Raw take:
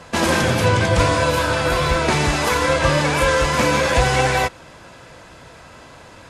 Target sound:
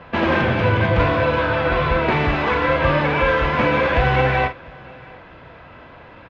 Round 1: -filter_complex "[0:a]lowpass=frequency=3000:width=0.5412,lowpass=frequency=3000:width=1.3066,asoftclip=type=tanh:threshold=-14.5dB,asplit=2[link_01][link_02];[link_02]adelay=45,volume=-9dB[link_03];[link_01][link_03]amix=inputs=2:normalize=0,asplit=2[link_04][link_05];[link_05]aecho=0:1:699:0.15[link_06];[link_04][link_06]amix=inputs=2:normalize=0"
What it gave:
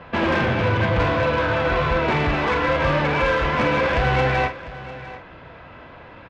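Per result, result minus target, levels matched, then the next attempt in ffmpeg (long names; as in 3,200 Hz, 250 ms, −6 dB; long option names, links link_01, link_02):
soft clipping: distortion +13 dB; echo-to-direct +9 dB
-filter_complex "[0:a]lowpass=frequency=3000:width=0.5412,lowpass=frequency=3000:width=1.3066,asoftclip=type=tanh:threshold=-5dB,asplit=2[link_01][link_02];[link_02]adelay=45,volume=-9dB[link_03];[link_01][link_03]amix=inputs=2:normalize=0,asplit=2[link_04][link_05];[link_05]aecho=0:1:699:0.15[link_06];[link_04][link_06]amix=inputs=2:normalize=0"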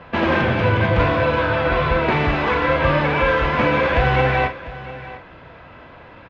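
echo-to-direct +9 dB
-filter_complex "[0:a]lowpass=frequency=3000:width=0.5412,lowpass=frequency=3000:width=1.3066,asoftclip=type=tanh:threshold=-5dB,asplit=2[link_01][link_02];[link_02]adelay=45,volume=-9dB[link_03];[link_01][link_03]amix=inputs=2:normalize=0,asplit=2[link_04][link_05];[link_05]aecho=0:1:699:0.0531[link_06];[link_04][link_06]amix=inputs=2:normalize=0"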